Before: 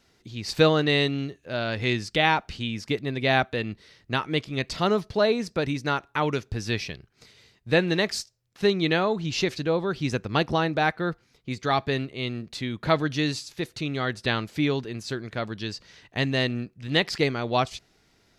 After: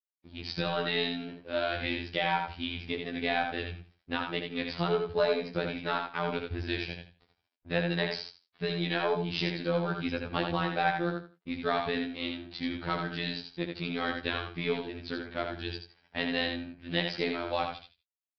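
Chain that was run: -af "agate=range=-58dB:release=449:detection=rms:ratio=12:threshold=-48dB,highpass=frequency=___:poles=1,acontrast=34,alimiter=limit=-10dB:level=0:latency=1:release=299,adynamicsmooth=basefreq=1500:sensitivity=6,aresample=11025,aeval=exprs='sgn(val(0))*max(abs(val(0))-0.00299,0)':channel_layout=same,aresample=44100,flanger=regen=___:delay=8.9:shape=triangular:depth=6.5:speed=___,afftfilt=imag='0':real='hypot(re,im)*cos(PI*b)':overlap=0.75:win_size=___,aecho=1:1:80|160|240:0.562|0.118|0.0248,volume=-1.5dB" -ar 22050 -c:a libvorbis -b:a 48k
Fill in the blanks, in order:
54, -33, 1.4, 2048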